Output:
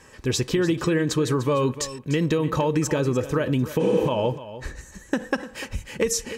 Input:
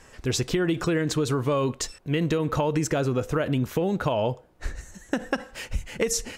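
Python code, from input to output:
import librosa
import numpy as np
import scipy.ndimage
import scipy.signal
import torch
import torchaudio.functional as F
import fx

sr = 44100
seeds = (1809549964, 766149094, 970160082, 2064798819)

y = fx.spec_repair(x, sr, seeds[0], start_s=3.82, length_s=0.24, low_hz=210.0, high_hz=10000.0, source='before')
y = fx.notch_comb(y, sr, f0_hz=700.0)
y = y + 10.0 ** (-14.0 / 20.0) * np.pad(y, (int(298 * sr / 1000.0), 0))[:len(y)]
y = y * 10.0 ** (2.5 / 20.0)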